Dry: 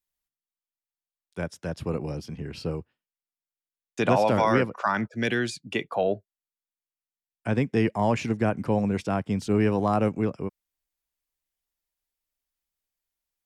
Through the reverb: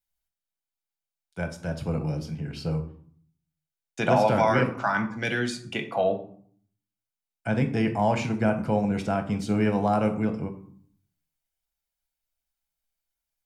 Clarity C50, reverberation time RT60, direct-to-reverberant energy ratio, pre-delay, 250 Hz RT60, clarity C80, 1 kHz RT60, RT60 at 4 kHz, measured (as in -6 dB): 11.5 dB, 0.60 s, 5.5 dB, 6 ms, 0.80 s, 15.5 dB, 0.60 s, 0.35 s